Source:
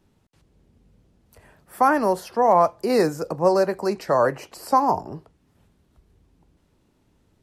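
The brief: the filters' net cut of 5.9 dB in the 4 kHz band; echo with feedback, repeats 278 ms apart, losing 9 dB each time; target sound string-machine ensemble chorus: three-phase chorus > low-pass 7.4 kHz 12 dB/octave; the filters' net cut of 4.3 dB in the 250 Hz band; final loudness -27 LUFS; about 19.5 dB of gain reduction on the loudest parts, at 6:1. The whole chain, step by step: peaking EQ 250 Hz -6 dB; peaking EQ 4 kHz -7 dB; compression 6:1, threshold -35 dBFS; feedback delay 278 ms, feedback 35%, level -9 dB; three-phase chorus; low-pass 7.4 kHz 12 dB/octave; trim +14.5 dB

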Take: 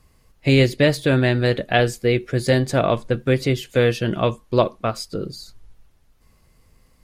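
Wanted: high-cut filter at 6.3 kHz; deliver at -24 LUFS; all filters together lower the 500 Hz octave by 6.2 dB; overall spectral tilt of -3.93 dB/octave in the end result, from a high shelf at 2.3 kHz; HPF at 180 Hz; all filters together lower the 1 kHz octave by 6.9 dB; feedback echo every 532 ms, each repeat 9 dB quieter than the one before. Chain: high-pass 180 Hz; low-pass 6.3 kHz; peaking EQ 500 Hz -5.5 dB; peaking EQ 1 kHz -8.5 dB; treble shelf 2.3 kHz +3.5 dB; feedback delay 532 ms, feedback 35%, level -9 dB; trim -0.5 dB

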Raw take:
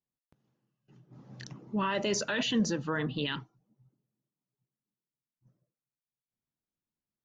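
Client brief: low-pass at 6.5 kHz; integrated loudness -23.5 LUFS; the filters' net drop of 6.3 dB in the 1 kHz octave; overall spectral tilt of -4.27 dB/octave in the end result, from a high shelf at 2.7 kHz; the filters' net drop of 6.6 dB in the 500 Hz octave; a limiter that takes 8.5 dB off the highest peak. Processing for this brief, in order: low-pass 6.5 kHz; peaking EQ 500 Hz -7 dB; peaking EQ 1 kHz -4.5 dB; treble shelf 2.7 kHz -9 dB; trim +15.5 dB; peak limiter -13.5 dBFS

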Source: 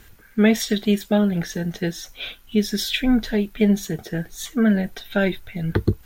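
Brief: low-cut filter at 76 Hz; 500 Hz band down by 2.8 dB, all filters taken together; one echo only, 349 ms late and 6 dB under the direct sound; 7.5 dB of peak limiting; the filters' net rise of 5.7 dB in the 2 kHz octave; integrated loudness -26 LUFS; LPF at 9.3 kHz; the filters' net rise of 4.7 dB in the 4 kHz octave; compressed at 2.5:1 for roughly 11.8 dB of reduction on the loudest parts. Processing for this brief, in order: high-pass 76 Hz; low-pass 9.3 kHz; peaking EQ 500 Hz -4 dB; peaking EQ 2 kHz +6.5 dB; peaking EQ 4 kHz +4 dB; compression 2.5:1, threshold -31 dBFS; peak limiter -22.5 dBFS; delay 349 ms -6 dB; trim +5.5 dB

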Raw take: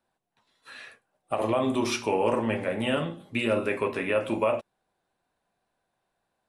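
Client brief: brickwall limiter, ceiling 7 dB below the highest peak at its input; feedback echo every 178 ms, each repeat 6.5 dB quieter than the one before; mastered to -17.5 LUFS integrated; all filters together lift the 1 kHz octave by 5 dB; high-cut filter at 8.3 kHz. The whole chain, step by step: low-pass 8.3 kHz; peaking EQ 1 kHz +6 dB; peak limiter -17 dBFS; feedback delay 178 ms, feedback 47%, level -6.5 dB; trim +10 dB

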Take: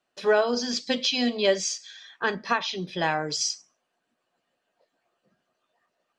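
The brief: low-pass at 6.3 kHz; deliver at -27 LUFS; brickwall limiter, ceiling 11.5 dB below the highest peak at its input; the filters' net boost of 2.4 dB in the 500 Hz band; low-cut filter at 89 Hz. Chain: high-pass 89 Hz; low-pass 6.3 kHz; peaking EQ 500 Hz +3 dB; trim +2.5 dB; peak limiter -17 dBFS

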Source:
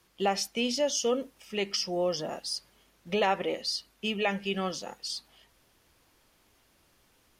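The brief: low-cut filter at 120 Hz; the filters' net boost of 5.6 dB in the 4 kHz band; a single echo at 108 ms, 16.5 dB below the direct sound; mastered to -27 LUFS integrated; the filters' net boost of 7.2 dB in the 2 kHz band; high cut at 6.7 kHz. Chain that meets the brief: high-pass 120 Hz; low-pass 6.7 kHz; peaking EQ 2 kHz +7 dB; peaking EQ 4 kHz +6.5 dB; delay 108 ms -16.5 dB; trim +0.5 dB

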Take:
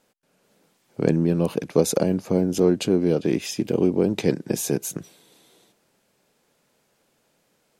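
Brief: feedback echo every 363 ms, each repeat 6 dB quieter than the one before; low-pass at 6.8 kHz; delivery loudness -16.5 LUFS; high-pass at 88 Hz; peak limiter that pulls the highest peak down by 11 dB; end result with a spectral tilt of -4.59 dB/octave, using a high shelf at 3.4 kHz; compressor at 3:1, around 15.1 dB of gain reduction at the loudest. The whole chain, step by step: high-pass 88 Hz; low-pass 6.8 kHz; treble shelf 3.4 kHz +5.5 dB; compression 3:1, threshold -34 dBFS; peak limiter -26.5 dBFS; feedback delay 363 ms, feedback 50%, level -6 dB; trim +20.5 dB

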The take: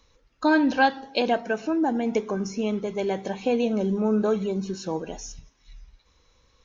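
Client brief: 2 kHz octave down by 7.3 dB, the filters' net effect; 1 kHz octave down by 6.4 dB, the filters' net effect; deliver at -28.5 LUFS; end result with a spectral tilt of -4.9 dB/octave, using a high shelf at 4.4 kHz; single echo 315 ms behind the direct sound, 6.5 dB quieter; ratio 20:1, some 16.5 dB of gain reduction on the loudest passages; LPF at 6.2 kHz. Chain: low-pass 6.2 kHz; peaking EQ 1 kHz -8 dB; peaking EQ 2 kHz -7.5 dB; treble shelf 4.4 kHz +5 dB; compression 20:1, threshold -35 dBFS; delay 315 ms -6.5 dB; trim +11 dB

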